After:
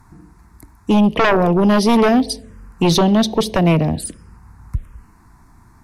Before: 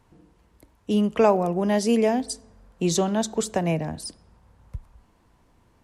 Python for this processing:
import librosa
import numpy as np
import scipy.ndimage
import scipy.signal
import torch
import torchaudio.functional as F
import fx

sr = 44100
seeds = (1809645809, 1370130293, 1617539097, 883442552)

y = fx.env_phaser(x, sr, low_hz=510.0, high_hz=1400.0, full_db=-25.5)
y = fx.fold_sine(y, sr, drive_db=10, ceiling_db=-9.0)